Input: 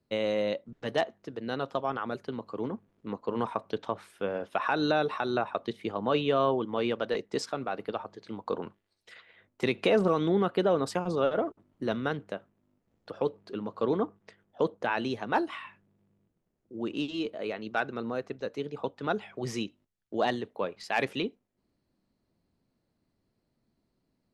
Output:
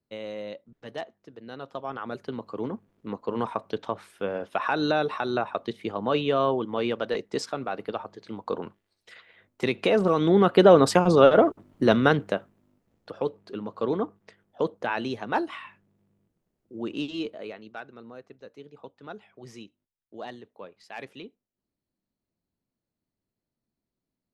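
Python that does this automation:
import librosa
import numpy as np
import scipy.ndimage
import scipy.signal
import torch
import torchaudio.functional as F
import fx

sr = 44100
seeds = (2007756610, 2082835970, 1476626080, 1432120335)

y = fx.gain(x, sr, db=fx.line((1.53, -7.5), (2.29, 2.0), (10.01, 2.0), (10.69, 11.0), (12.21, 11.0), (13.16, 1.0), (17.22, 1.0), (17.83, -11.0)))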